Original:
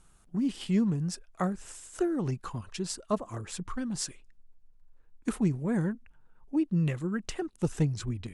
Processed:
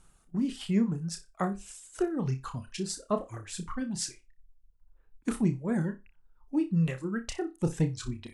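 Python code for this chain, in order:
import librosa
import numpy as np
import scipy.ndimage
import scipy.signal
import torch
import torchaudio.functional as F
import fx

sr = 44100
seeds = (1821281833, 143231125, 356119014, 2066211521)

y = fx.dereverb_blind(x, sr, rt60_s=1.1)
y = fx.room_flutter(y, sr, wall_m=5.2, rt60_s=0.22)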